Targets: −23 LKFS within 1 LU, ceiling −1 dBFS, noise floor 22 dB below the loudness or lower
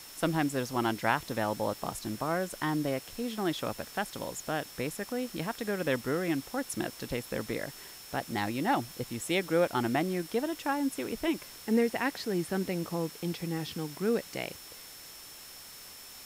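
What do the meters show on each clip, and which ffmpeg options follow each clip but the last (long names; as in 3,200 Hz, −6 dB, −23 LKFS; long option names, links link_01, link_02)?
interfering tone 5,400 Hz; level of the tone −52 dBFS; background noise floor −48 dBFS; target noise floor −55 dBFS; integrated loudness −32.5 LKFS; sample peak −11.5 dBFS; target loudness −23.0 LKFS
→ -af "bandreject=frequency=5400:width=30"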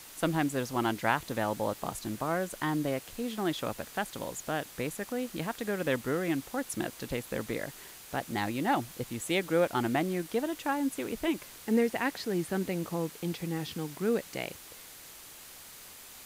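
interfering tone none found; background noise floor −49 dBFS; target noise floor −55 dBFS
→ -af "afftdn=noise_reduction=6:noise_floor=-49"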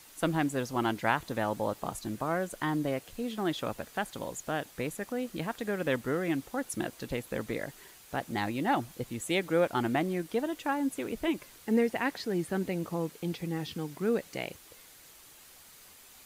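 background noise floor −55 dBFS; integrated loudness −32.5 LKFS; sample peak −11.5 dBFS; target loudness −23.0 LKFS
→ -af "volume=9.5dB"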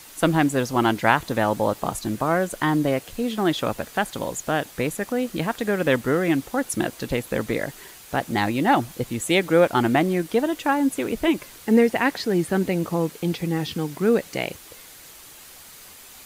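integrated loudness −23.0 LKFS; sample peak −2.0 dBFS; background noise floor −45 dBFS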